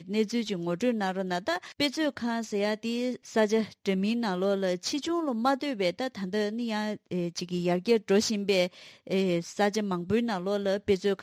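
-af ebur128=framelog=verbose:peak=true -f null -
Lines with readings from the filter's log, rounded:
Integrated loudness:
  I:         -28.8 LUFS
  Threshold: -38.8 LUFS
Loudness range:
  LRA:         2.0 LU
  Threshold: -48.8 LUFS
  LRA low:   -29.8 LUFS
  LRA high:  -27.8 LUFS
True peak:
  Peak:      -12.0 dBFS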